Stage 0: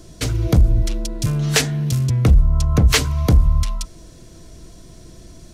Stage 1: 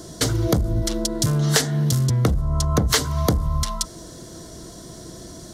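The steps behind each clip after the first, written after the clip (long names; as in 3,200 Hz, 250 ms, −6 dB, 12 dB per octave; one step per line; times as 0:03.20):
high-pass filter 200 Hz 6 dB per octave
parametric band 2,500 Hz −13.5 dB 0.39 octaves
downward compressor 3 to 1, threshold −26 dBFS, peak gain reduction 10 dB
level +8 dB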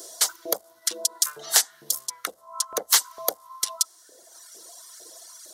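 RIAA equalisation recording
reverb reduction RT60 1.7 s
auto-filter high-pass saw up 2.2 Hz 420–1,600 Hz
level −7.5 dB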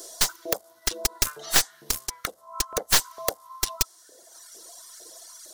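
stylus tracing distortion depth 0.11 ms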